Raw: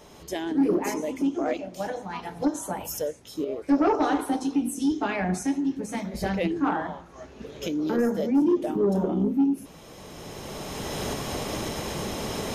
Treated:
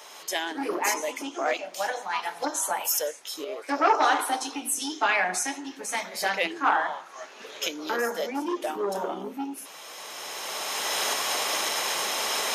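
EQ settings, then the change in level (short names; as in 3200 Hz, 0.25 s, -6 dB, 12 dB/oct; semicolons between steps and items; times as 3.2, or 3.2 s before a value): HPF 950 Hz 12 dB/oct; +9.0 dB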